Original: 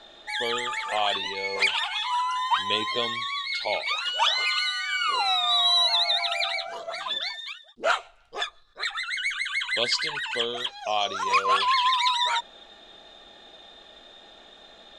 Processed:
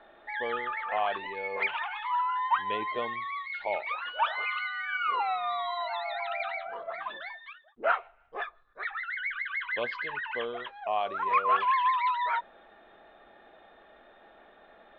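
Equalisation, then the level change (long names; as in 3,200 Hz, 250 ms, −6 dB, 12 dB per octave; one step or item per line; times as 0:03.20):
low-pass filter 2,100 Hz 24 dB per octave
low-shelf EQ 280 Hz −6.5 dB
−1.5 dB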